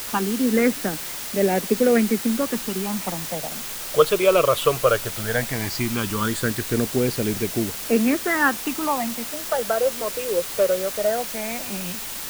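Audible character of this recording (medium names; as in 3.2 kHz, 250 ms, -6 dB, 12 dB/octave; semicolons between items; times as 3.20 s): phasing stages 8, 0.17 Hz, lowest notch 240–1100 Hz; a quantiser's noise floor 6-bit, dither triangular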